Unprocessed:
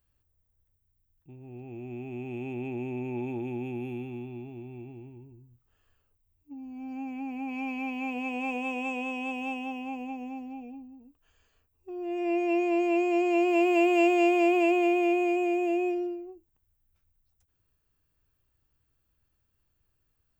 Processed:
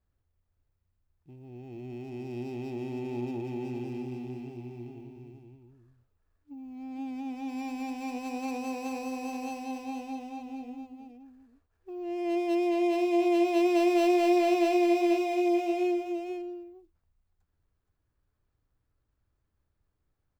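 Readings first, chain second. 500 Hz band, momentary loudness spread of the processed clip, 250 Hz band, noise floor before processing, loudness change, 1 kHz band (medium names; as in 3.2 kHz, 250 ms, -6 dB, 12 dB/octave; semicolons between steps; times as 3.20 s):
-0.5 dB, 20 LU, -0.5 dB, -75 dBFS, -1.5 dB, -1.0 dB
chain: median filter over 15 samples; delay 472 ms -6 dB; trim -1.5 dB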